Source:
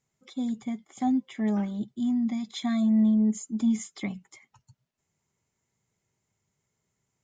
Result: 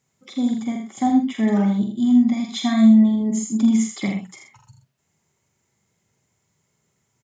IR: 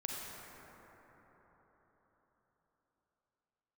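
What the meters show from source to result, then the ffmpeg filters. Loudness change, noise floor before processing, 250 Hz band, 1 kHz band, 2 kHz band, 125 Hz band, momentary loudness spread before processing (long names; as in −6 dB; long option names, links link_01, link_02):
+8.5 dB, −82 dBFS, +8.5 dB, +9.5 dB, +9.5 dB, can't be measured, 14 LU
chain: -filter_complex "[0:a]highpass=65,asplit=2[link_01][link_02];[link_02]adelay=45,volume=-6dB[link_03];[link_01][link_03]amix=inputs=2:normalize=0,aecho=1:1:81:0.501,volume=7.5dB"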